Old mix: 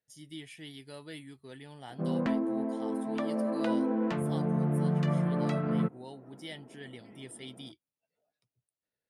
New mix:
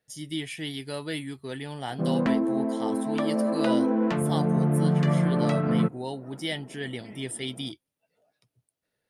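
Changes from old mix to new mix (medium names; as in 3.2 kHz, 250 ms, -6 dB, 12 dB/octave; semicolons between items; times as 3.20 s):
speech +12.0 dB; background +5.5 dB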